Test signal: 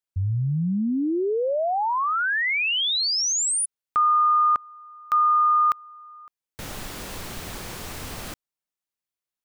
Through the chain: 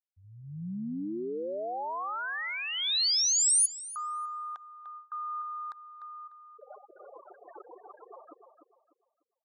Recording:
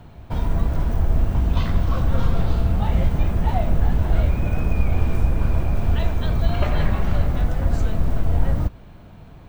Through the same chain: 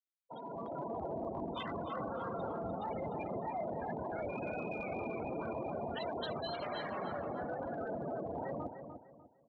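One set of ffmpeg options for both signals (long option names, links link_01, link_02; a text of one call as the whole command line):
ffmpeg -i in.wav -filter_complex "[0:a]highpass=390,afftfilt=real='re*gte(hypot(re,im),0.0398)':imag='im*gte(hypot(re,im),0.0398)':win_size=1024:overlap=0.75,areverse,acompressor=threshold=-34dB:ratio=8:attack=1.6:release=138:knee=1:detection=rms,areverse,alimiter=level_in=10.5dB:limit=-24dB:level=0:latency=1:release=56,volume=-10.5dB,dynaudnorm=framelen=150:gausssize=7:maxgain=9.5dB,aexciter=amount=4.3:drive=1.1:freq=3700,asplit=2[link_01][link_02];[link_02]adelay=298,lowpass=frequency=2800:poles=1,volume=-8dB,asplit=2[link_03][link_04];[link_04]adelay=298,lowpass=frequency=2800:poles=1,volume=0.31,asplit=2[link_05][link_06];[link_06]adelay=298,lowpass=frequency=2800:poles=1,volume=0.31,asplit=2[link_07][link_08];[link_08]adelay=298,lowpass=frequency=2800:poles=1,volume=0.31[link_09];[link_03][link_05][link_07][link_09]amix=inputs=4:normalize=0[link_10];[link_01][link_10]amix=inputs=2:normalize=0,volume=-7dB" out.wav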